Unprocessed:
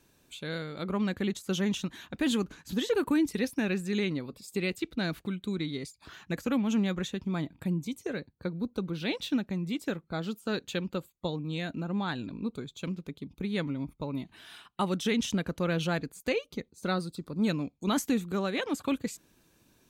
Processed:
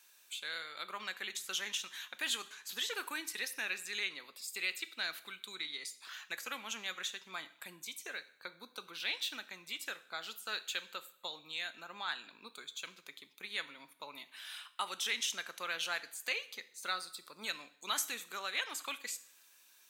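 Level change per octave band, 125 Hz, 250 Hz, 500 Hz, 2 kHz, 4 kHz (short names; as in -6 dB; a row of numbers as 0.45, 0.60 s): -34.0, -28.5, -17.5, -0.5, +1.0 dB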